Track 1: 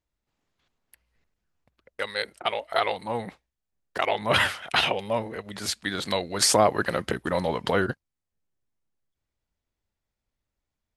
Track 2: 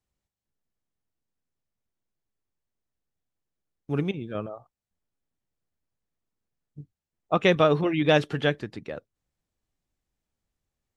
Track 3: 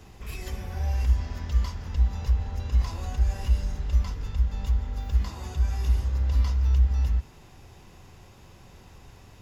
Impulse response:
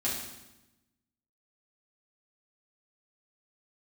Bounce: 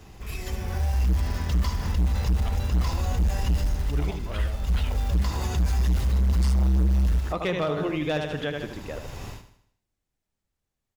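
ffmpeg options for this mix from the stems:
-filter_complex "[0:a]volume=-11.5dB[a];[1:a]volume=-1dB,asplit=3[b][c][d];[c]volume=-7.5dB[e];[2:a]dynaudnorm=f=580:g=3:m=14dB,acrusher=bits=6:mode=log:mix=0:aa=0.000001,volume=1dB,asplit=2[f][g];[g]volume=-11.5dB[h];[d]apad=whole_len=415002[i];[f][i]sidechaincompress=threshold=-31dB:ratio=8:attack=5.5:release=797[j];[e][h]amix=inputs=2:normalize=0,aecho=0:1:78|156|234|312|390|468:1|0.46|0.212|0.0973|0.0448|0.0206[k];[a][b][j][k]amix=inputs=4:normalize=0,asoftclip=type=hard:threshold=-12dB,alimiter=limit=-18.5dB:level=0:latency=1:release=116"

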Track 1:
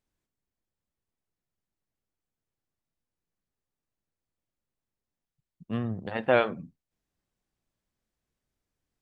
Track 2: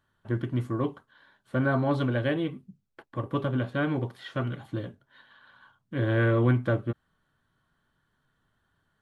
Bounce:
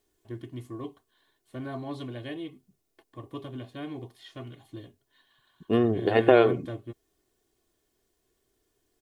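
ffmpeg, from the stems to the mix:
-filter_complex "[0:a]equalizer=f=410:t=o:w=1.2:g=14.5,acompressor=threshold=-16dB:ratio=5,volume=2dB[a];[1:a]equalizer=f=1.4k:w=3.7:g=-13,volume=-10.5dB[b];[a][b]amix=inputs=2:normalize=0,highshelf=f=3.5k:g=11,aecho=1:1:2.8:0.5"

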